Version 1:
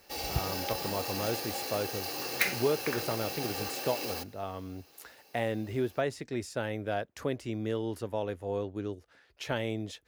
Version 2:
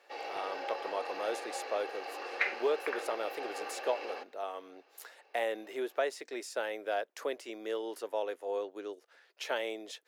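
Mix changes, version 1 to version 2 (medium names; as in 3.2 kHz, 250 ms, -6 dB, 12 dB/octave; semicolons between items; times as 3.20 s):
background: add Chebyshev low-pass 2 kHz, order 2; master: add high-pass 400 Hz 24 dB/octave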